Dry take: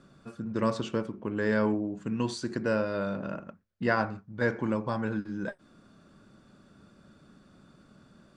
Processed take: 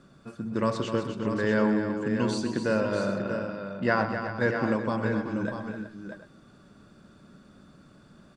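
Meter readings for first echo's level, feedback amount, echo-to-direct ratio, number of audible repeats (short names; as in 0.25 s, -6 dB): -11.0 dB, no steady repeat, -3.5 dB, 5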